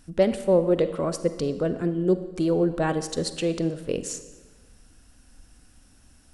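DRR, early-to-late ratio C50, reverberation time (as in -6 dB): 11.0 dB, 11.5 dB, 1.3 s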